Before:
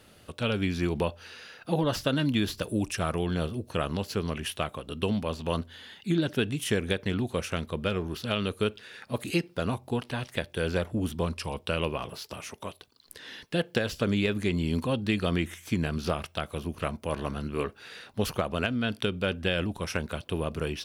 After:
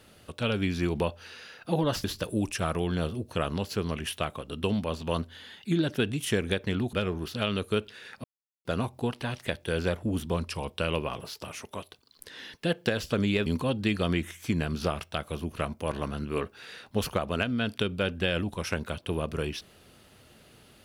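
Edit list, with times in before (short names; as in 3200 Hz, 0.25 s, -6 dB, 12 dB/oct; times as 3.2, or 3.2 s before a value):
2.04–2.43 cut
7.32–7.82 cut
9.13–9.54 mute
14.35–14.69 cut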